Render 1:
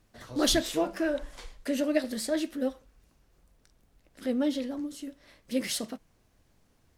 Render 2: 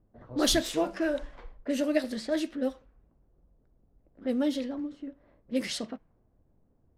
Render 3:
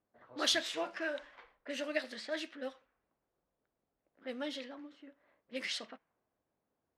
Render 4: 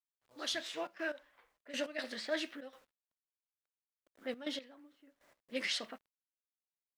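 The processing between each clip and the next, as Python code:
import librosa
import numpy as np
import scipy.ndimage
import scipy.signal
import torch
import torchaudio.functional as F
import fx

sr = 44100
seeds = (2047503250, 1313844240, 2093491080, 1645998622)

y1 = fx.env_lowpass(x, sr, base_hz=600.0, full_db=-24.5)
y2 = fx.bandpass_q(y1, sr, hz=2200.0, q=0.75)
y3 = fx.fade_in_head(y2, sr, length_s=1.51)
y3 = fx.quant_dither(y3, sr, seeds[0], bits=12, dither='none')
y3 = fx.step_gate(y3, sr, bpm=121, pattern='x.xxxxx.x.....', floor_db=-12.0, edge_ms=4.5)
y3 = y3 * 10.0 ** (2.5 / 20.0)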